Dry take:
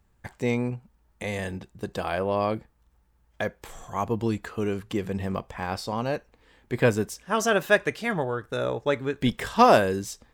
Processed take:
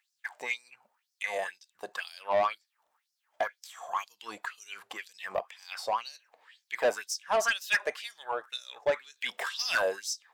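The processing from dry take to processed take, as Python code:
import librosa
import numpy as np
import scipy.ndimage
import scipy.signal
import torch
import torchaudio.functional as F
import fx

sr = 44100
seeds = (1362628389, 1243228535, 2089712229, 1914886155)

y = fx.filter_lfo_highpass(x, sr, shape='sine', hz=2.0, low_hz=620.0, high_hz=5500.0, q=4.8)
y = fx.quant_float(y, sr, bits=8)
y = 10.0 ** (-16.0 / 20.0) * np.tanh(y / 10.0 ** (-16.0 / 20.0))
y = F.gain(torch.from_numpy(y), -4.0).numpy()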